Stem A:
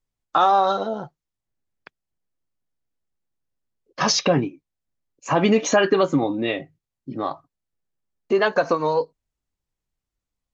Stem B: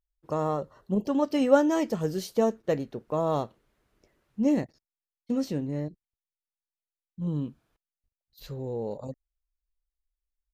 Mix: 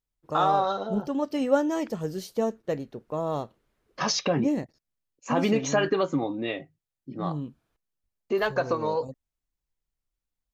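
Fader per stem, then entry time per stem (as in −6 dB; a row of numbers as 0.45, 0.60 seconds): −6.5, −2.5 decibels; 0.00, 0.00 seconds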